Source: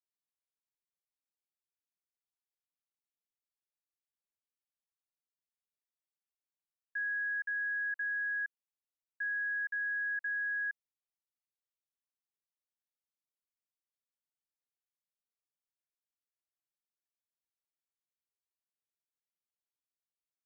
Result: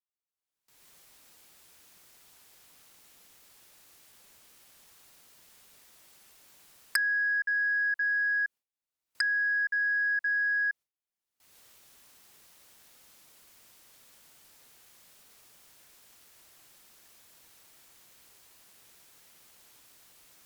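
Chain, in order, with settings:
camcorder AGC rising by 35 dB per second
harmonic generator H 3 −8 dB, 7 −7 dB, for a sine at −11 dBFS
noise gate with hold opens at −55 dBFS
level −3 dB

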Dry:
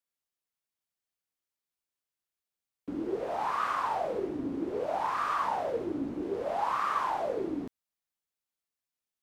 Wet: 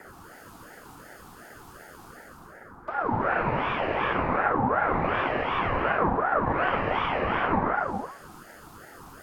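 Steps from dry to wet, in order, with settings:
lower of the sound and its delayed copy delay 0.53 ms
treble cut that deepens with the level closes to 1,100 Hz, closed at −32.5 dBFS
reversed playback
upward compression, threshold −44 dBFS
reversed playback
reverb whose tail is shaped and stops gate 450 ms flat, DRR −5.5 dB
noise in a band 170–840 Hz −51 dBFS
ring modulator whose carrier an LFO sweeps 810 Hz, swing 40%, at 2.7 Hz
level +6.5 dB

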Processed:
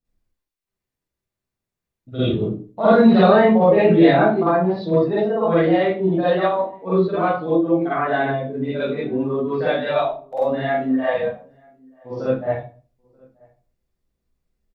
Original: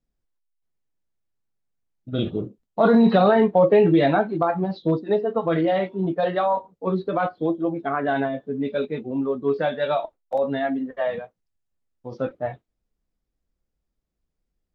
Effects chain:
0:10.65–0:12.22: double-tracking delay 38 ms −4.5 dB
slap from a distant wall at 160 metres, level −29 dB
convolution reverb RT60 0.40 s, pre-delay 42 ms, DRR −11.5 dB
level −6.5 dB

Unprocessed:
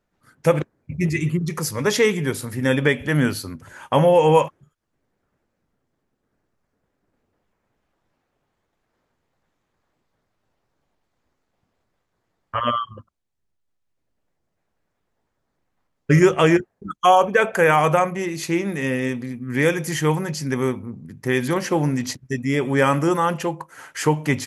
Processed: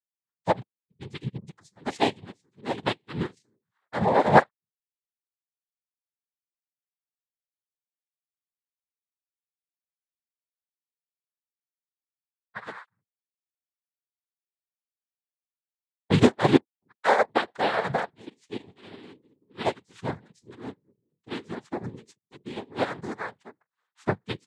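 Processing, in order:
noise reduction from a noise print of the clip's start 12 dB
cochlear-implant simulation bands 6
expander for the loud parts 2.5 to 1, over −33 dBFS

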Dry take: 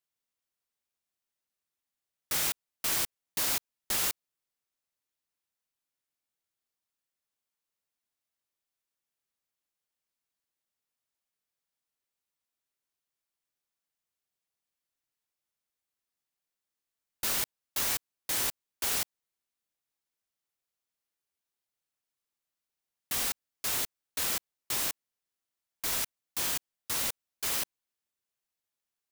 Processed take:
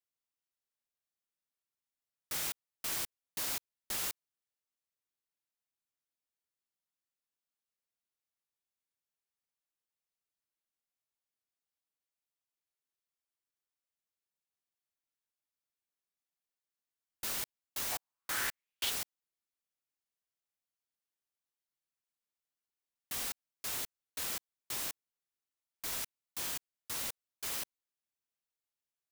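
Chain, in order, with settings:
0:17.91–0:18.89: parametric band 700 Hz → 3,400 Hz +14 dB 0.88 octaves
level −7 dB

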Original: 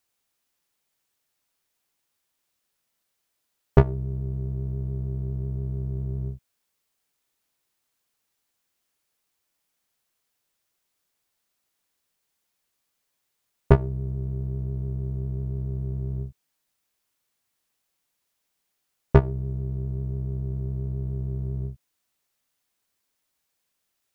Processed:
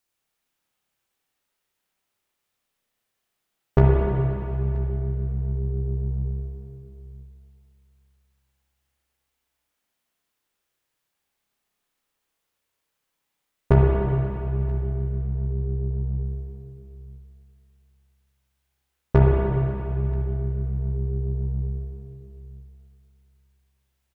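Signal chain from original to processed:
0:15.15–0:16.25: bass and treble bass 0 dB, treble −9 dB
single-tap delay 978 ms −22.5 dB
convolution reverb RT60 2.9 s, pre-delay 30 ms, DRR −3 dB
level −3 dB

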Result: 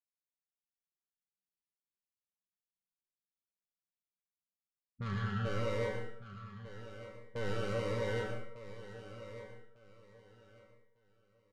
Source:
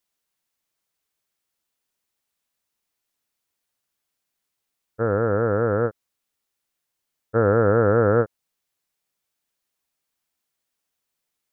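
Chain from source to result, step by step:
noise gate with hold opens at −18 dBFS
low-pass that shuts in the quiet parts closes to 500 Hz, open at −17 dBFS
time-frequency box erased 0:04.06–0:05.45, 240–1,300 Hz
low-pass that shuts in the quiet parts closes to 340 Hz, open at −21.5 dBFS
automatic gain control gain up to 15 dB
soft clipping −19.5 dBFS, distortion −6 dB
tuned comb filter 190 Hz, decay 0.53 s, harmonics all, mix 90%
on a send: repeating echo 1,200 ms, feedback 26%, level −13 dB
on the sum: dense smooth reverb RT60 0.64 s, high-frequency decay 0.65×, pre-delay 100 ms, DRR 3 dB
phaser whose notches keep moving one way falling 1.4 Hz
level +1.5 dB

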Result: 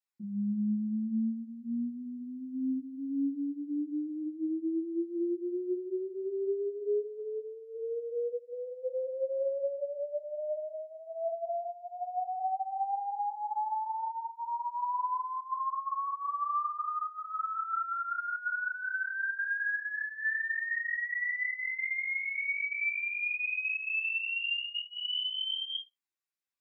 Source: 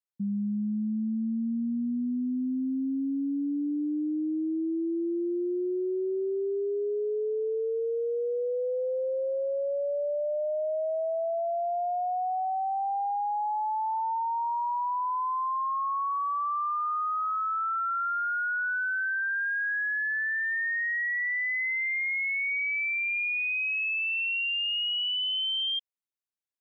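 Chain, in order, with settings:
notch filter 2,900 Hz, Q 26
convolution reverb RT60 0.15 s, pre-delay 3 ms, DRR 0 dB
brickwall limiter −27 dBFS, peak gain reduction 12 dB
0:07.19–0:08.53: dynamic equaliser 150 Hz, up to −8 dB, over −55 dBFS, Q 0.96
string-ensemble chorus

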